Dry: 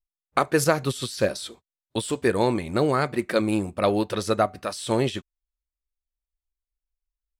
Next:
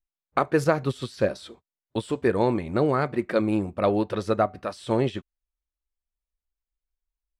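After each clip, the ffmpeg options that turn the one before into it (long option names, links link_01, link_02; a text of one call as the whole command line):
ffmpeg -i in.wav -af "lowpass=frequency=1700:poles=1" out.wav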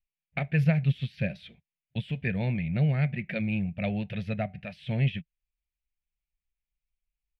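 ffmpeg -i in.wav -af "firequalizer=gain_entry='entry(100,0);entry(160,9);entry(310,-21);entry(670,-9);entry(1100,-28);entry(1700,-4);entry(2400,7);entry(4300,-12);entry(7800,-27);entry(12000,-14)':delay=0.05:min_phase=1" out.wav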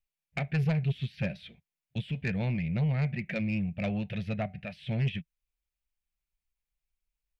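ffmpeg -i in.wav -af "asoftclip=type=tanh:threshold=-22.5dB" out.wav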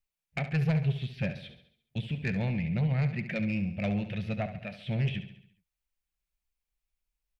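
ffmpeg -i in.wav -af "aecho=1:1:69|138|207|276|345|414:0.282|0.147|0.0762|0.0396|0.0206|0.0107" out.wav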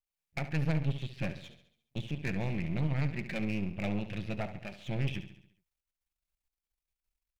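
ffmpeg -i in.wav -af "aeval=exprs='if(lt(val(0),0),0.251*val(0),val(0))':channel_layout=same" out.wav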